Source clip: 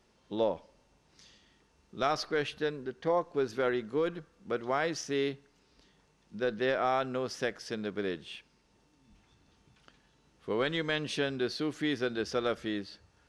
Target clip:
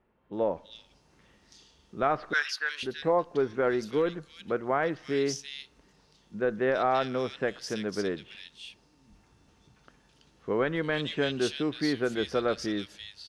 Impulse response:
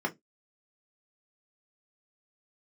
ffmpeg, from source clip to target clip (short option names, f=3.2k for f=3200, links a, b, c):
-filter_complex "[0:a]dynaudnorm=f=170:g=5:m=6dB,asettb=1/sr,asplit=3[a][b][c];[a]atrim=end=2.334[d];[b]atrim=start=2.33:end=2.83,asetpts=PTS-STARTPTS,afade=t=in:d=0.004:c=qsin,afade=t=out:st=0.496:d=0.004:c=qsin,highpass=f=1.5k:t=q:w=2.9[e];[c]atrim=start=2.826[f];[d][e]acrossfade=d=0.004:c1=hsin:c2=qsin[g];[g][f]acrossfade=d=0.004:c1=qsin:c2=hsin,acrossover=split=2500[h][i];[i]adelay=330[j];[h][j]amix=inputs=2:normalize=0,volume=-2.5dB"